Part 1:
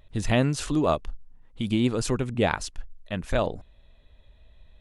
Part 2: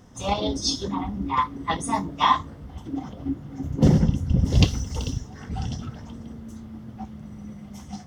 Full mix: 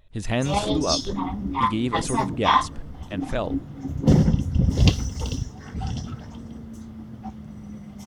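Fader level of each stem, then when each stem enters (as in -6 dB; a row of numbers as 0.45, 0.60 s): -2.0, +0.5 dB; 0.00, 0.25 s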